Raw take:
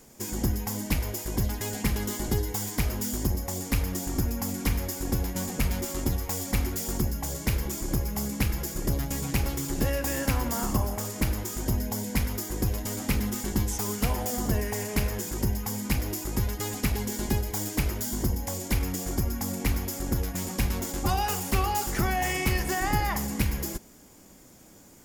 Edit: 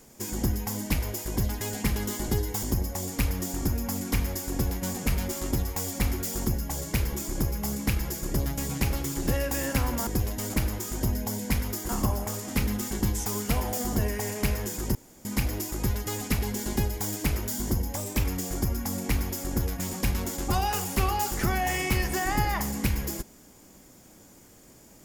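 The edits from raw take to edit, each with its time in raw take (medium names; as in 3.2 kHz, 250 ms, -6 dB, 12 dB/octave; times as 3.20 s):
2.63–3.16 s: delete
10.60–11.19 s: swap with 12.54–13.01 s
15.48–15.78 s: room tone
18.50–18.80 s: speed 109%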